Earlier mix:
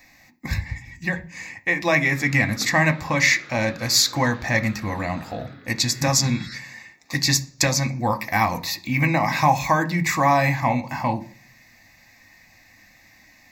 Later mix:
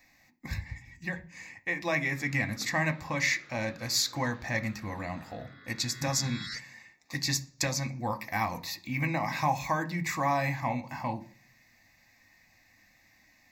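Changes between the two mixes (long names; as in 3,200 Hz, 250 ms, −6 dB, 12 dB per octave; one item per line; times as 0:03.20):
speech −10.0 dB
first sound −11.5 dB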